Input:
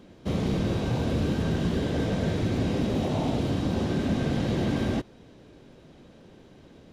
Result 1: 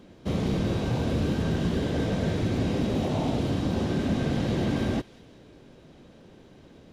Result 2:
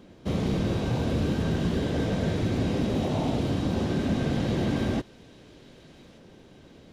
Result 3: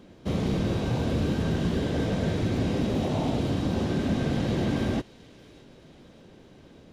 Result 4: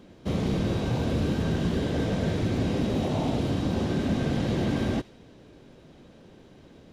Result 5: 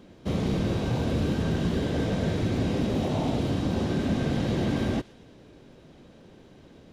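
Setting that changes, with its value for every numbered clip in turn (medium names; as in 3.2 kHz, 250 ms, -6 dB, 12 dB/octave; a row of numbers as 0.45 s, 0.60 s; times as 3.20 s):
feedback echo behind a high-pass, time: 188 ms, 1173 ms, 616 ms, 79 ms, 118 ms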